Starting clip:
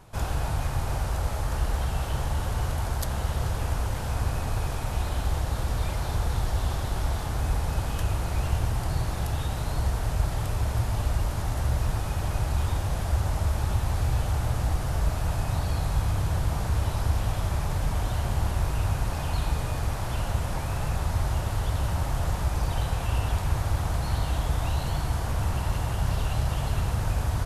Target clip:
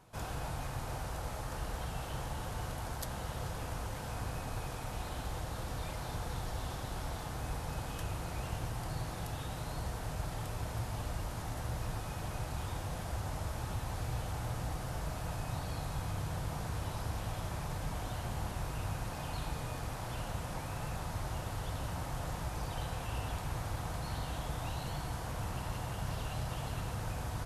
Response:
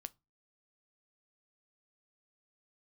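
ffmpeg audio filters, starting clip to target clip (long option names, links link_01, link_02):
-filter_complex "[0:a]highpass=frequency=78:poles=1[link_01];[1:a]atrim=start_sample=2205,asetrate=83790,aresample=44100[link_02];[link_01][link_02]afir=irnorm=-1:irlink=0,volume=3dB"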